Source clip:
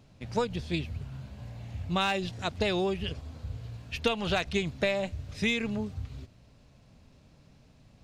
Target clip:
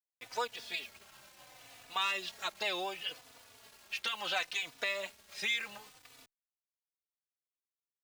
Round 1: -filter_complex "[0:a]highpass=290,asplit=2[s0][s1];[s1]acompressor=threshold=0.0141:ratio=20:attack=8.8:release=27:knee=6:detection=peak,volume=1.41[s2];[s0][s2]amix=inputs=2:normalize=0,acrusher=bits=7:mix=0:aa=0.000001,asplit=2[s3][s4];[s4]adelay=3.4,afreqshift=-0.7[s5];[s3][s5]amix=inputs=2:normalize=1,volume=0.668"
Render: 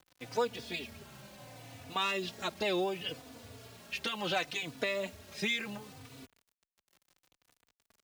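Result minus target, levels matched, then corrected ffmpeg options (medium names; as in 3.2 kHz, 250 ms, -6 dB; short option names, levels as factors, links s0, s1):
250 Hz band +12.5 dB
-filter_complex "[0:a]highpass=860,asplit=2[s0][s1];[s1]acompressor=threshold=0.0141:ratio=20:attack=8.8:release=27:knee=6:detection=peak,volume=1.41[s2];[s0][s2]amix=inputs=2:normalize=0,acrusher=bits=7:mix=0:aa=0.000001,asplit=2[s3][s4];[s4]adelay=3.4,afreqshift=-0.7[s5];[s3][s5]amix=inputs=2:normalize=1,volume=0.668"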